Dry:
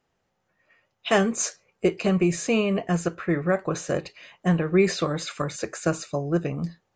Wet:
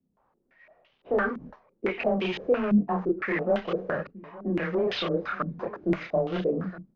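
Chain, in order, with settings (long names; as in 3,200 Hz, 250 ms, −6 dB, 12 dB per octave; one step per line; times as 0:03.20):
variable-slope delta modulation 32 kbit/s
low-shelf EQ 180 Hz −6.5 dB
in parallel at −1.5 dB: downward compressor, threshold −35 dBFS, peak gain reduction 17.5 dB
on the sum: multi-voice chorus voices 6, 0.65 Hz, delay 29 ms, depth 4.5 ms
frequency shifter +16 Hz
soft clipping −24.5 dBFS, distortion −11 dB
single-tap delay 867 ms −16.5 dB
low-pass on a step sequencer 5.9 Hz 220–3,100 Hz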